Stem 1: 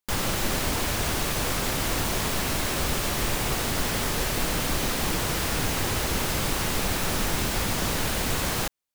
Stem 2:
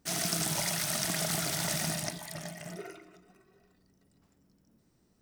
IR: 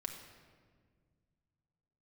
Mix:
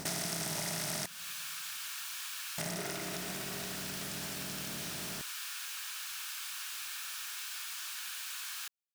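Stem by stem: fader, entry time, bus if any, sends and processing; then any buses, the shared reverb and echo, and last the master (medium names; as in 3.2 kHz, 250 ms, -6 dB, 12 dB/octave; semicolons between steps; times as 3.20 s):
-10.5 dB, 0.00 s, no send, high-pass 1.4 kHz 24 dB/octave; band-stop 2 kHz, Q 6.3
+0.5 dB, 0.00 s, muted 1.06–2.58 s, send -21.5 dB, spectral levelling over time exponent 0.4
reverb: on, RT60 1.7 s, pre-delay 5 ms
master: compression 4:1, threshold -35 dBFS, peak gain reduction 11 dB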